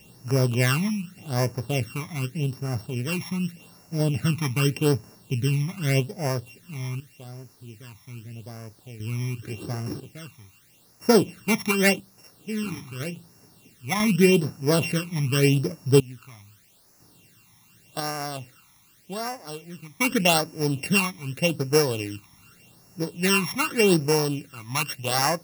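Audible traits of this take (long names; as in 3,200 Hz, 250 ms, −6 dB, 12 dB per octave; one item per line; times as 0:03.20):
a buzz of ramps at a fixed pitch in blocks of 16 samples
sample-and-hold tremolo 1 Hz, depth 90%
a quantiser's noise floor 10 bits, dither triangular
phaser sweep stages 12, 0.84 Hz, lowest notch 480–3,300 Hz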